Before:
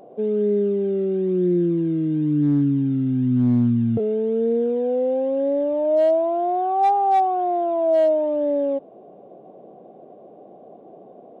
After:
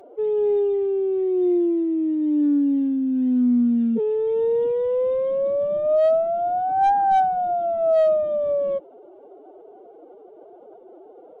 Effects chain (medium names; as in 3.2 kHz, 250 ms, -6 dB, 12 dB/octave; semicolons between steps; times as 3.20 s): resampled via 22.05 kHz; formant-preserving pitch shift +12 st